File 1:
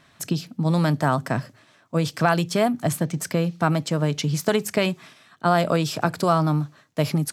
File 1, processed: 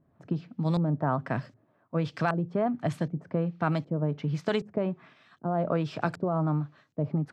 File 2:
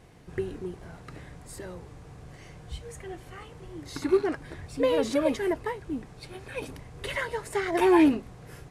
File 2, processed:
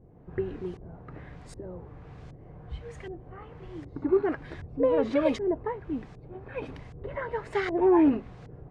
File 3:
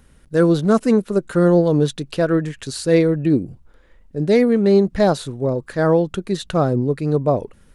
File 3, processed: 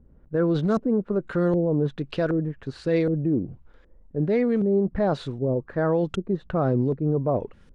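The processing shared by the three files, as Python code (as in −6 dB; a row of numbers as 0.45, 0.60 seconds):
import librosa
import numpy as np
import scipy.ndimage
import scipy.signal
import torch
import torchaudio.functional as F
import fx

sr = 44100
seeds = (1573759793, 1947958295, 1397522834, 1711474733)

p1 = fx.over_compress(x, sr, threshold_db=-19.0, ratio=-0.5)
p2 = x + (p1 * 10.0 ** (-3.0 / 20.0))
p3 = fx.filter_lfo_lowpass(p2, sr, shape='saw_up', hz=1.3, low_hz=390.0, high_hz=6000.0, q=0.8)
y = p3 * 10.0 ** (-12 / 20.0) / np.max(np.abs(p3))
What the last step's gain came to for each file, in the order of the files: −10.5, −4.5, −9.0 decibels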